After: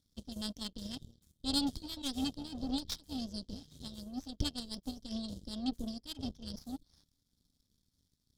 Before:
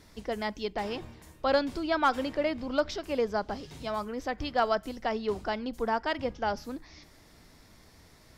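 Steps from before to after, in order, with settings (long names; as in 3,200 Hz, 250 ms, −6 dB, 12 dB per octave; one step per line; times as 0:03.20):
linear-phase brick-wall band-stop 300–3,100 Hz
power curve on the samples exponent 2
level +9 dB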